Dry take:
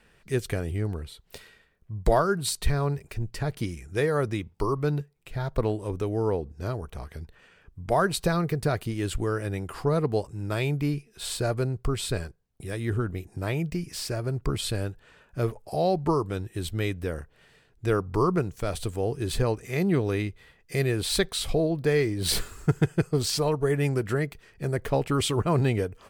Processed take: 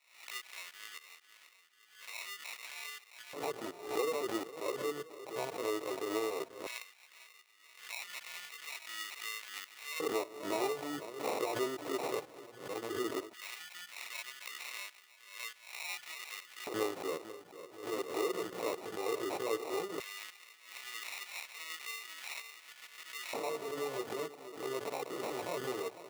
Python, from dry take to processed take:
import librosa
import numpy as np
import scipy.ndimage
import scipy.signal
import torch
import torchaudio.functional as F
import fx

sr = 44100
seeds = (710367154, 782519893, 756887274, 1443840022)

p1 = fx.highpass(x, sr, hz=170.0, slope=6)
p2 = fx.high_shelf(p1, sr, hz=10000.0, db=-3.5)
p3 = fx.hum_notches(p2, sr, base_hz=60, count=4)
p4 = fx.level_steps(p3, sr, step_db=18)
p5 = p4 + fx.echo_split(p4, sr, split_hz=1100.0, low_ms=488, high_ms=147, feedback_pct=52, wet_db=-13.0, dry=0)
p6 = fx.chorus_voices(p5, sr, voices=4, hz=0.35, base_ms=17, depth_ms=1.6, mix_pct=60)
p7 = fx.sample_hold(p6, sr, seeds[0], rate_hz=1600.0, jitter_pct=0)
p8 = fx.filter_lfo_highpass(p7, sr, shape='square', hz=0.15, low_hz=420.0, high_hz=2100.0, q=1.4)
p9 = fx.pre_swell(p8, sr, db_per_s=97.0)
y = p9 * 10.0 ** (2.0 / 20.0)